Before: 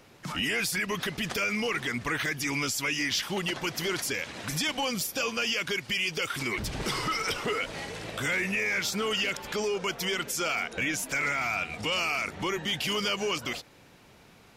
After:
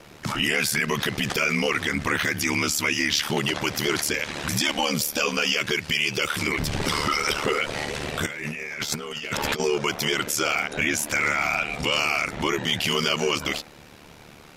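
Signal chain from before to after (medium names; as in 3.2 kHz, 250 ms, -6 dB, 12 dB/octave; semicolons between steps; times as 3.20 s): de-hum 260.5 Hz, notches 10; in parallel at -0.5 dB: peak limiter -28 dBFS, peak gain reduction 9 dB; on the sum: ring modulator 37 Hz; 8.26–9.60 s: compressor with a negative ratio -34 dBFS, ratio -0.5; trim +5.5 dB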